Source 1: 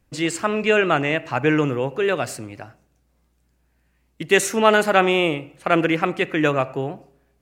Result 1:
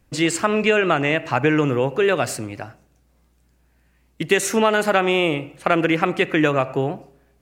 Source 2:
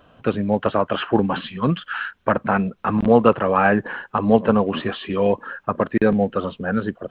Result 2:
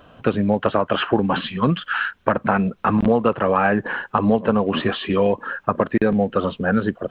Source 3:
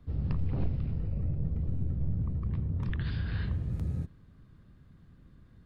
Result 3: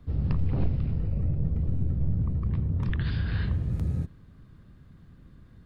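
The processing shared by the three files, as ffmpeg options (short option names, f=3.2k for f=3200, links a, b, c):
-af "acompressor=threshold=-18dB:ratio=6,volume=4.5dB"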